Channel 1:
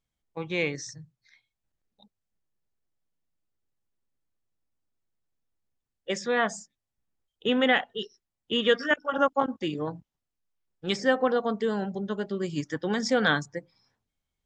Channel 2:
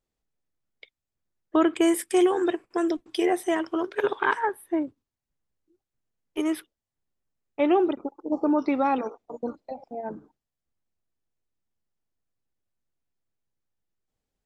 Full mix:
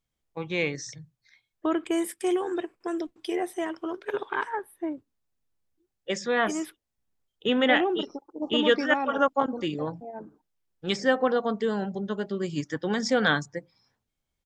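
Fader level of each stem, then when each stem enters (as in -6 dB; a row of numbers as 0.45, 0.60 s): +0.5, -5.5 dB; 0.00, 0.10 s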